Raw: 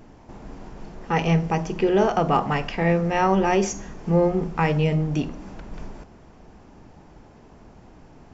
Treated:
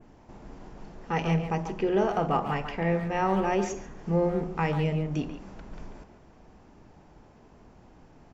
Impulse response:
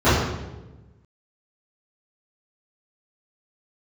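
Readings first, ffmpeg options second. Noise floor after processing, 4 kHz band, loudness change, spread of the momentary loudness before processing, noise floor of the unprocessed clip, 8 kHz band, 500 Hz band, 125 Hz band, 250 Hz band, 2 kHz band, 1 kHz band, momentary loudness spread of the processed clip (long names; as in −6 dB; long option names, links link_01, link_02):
−55 dBFS, −7.5 dB, −6.0 dB, 21 LU, −49 dBFS, can't be measured, −5.5 dB, −6.0 dB, −6.0 dB, −6.0 dB, −5.5 dB, 21 LU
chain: -filter_complex "[0:a]asplit=2[link_01][link_02];[link_02]adelay=140,highpass=300,lowpass=3400,asoftclip=type=hard:threshold=-16.5dB,volume=-7dB[link_03];[link_01][link_03]amix=inputs=2:normalize=0,adynamicequalizer=threshold=0.00562:dfrequency=5000:dqfactor=0.8:tfrequency=5000:tqfactor=0.8:attack=5:release=100:ratio=0.375:range=2.5:mode=cutabove:tftype=bell,volume=-6dB"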